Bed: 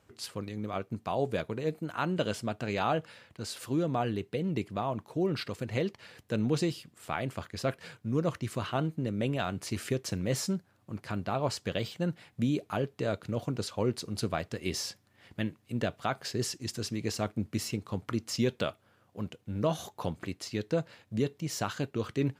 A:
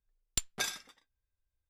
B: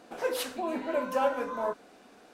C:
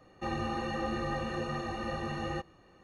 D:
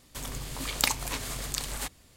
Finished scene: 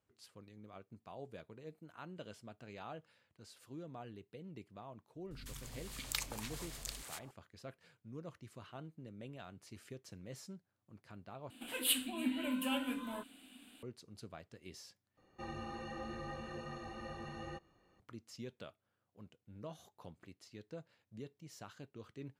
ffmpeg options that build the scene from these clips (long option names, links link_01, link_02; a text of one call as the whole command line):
ffmpeg -i bed.wav -i cue0.wav -i cue1.wav -i cue2.wav -i cue3.wav -filter_complex "[0:a]volume=-19dB[link_01];[4:a]acrossover=split=330|1000[link_02][link_03][link_04];[link_04]adelay=160[link_05];[link_03]adelay=330[link_06];[link_02][link_06][link_05]amix=inputs=3:normalize=0[link_07];[2:a]firequalizer=gain_entry='entry(110,0);entry(160,-7);entry(260,9);entry(380,-14);entry(650,-12);entry(1100,-9);entry(2000,-1);entry(3000,13);entry(5700,-13);entry(8200,11)':delay=0.05:min_phase=1[link_08];[3:a]highshelf=frequency=8500:gain=4[link_09];[link_01]asplit=3[link_10][link_11][link_12];[link_10]atrim=end=11.504[link_13];[link_08]atrim=end=2.33,asetpts=PTS-STARTPTS,volume=-4.5dB[link_14];[link_11]atrim=start=13.826:end=15.174[link_15];[link_09]atrim=end=2.83,asetpts=PTS-STARTPTS,volume=-11dB[link_16];[link_12]atrim=start=17.996[link_17];[link_07]atrim=end=2.16,asetpts=PTS-STARTPTS,volume=-12dB,afade=type=in:duration=0.004:curve=hsin,afade=type=out:start_time=2.156:duration=0.004:curve=hsin,adelay=5150[link_18];[link_13][link_14]acrossfade=duration=0.004:curve1=hsin:curve2=hsin[link_19];[link_19][link_15]acrossfade=duration=0.004:curve1=hsin:curve2=hsin[link_20];[link_20][link_16]acrossfade=duration=0.004:curve1=hsin:curve2=hsin[link_21];[link_21][link_17]acrossfade=duration=0.004:curve1=hsin:curve2=hsin[link_22];[link_22][link_18]amix=inputs=2:normalize=0" out.wav